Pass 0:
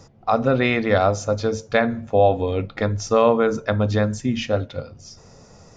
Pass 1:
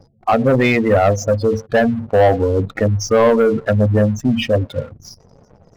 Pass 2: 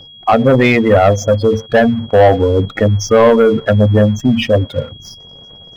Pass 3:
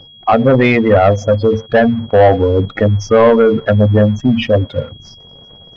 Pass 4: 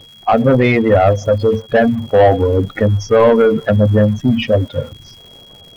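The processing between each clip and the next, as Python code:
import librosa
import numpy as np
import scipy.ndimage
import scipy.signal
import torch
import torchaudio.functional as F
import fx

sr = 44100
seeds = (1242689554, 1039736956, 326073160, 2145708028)

y1 = fx.spec_gate(x, sr, threshold_db=-15, keep='strong')
y1 = fx.leveller(y1, sr, passes=2)
y2 = fx.high_shelf(y1, sr, hz=6600.0, db=-4.0)
y2 = y2 + 10.0 ** (-40.0 / 20.0) * np.sin(2.0 * np.pi * 3300.0 * np.arange(len(y2)) / sr)
y2 = y2 * librosa.db_to_amplitude(4.0)
y3 = scipy.ndimage.gaussian_filter1d(y2, 1.6, mode='constant')
y4 = fx.spec_quant(y3, sr, step_db=15)
y4 = fx.dmg_crackle(y4, sr, seeds[0], per_s=260.0, level_db=-33.0)
y4 = y4 * librosa.db_to_amplitude(-1.0)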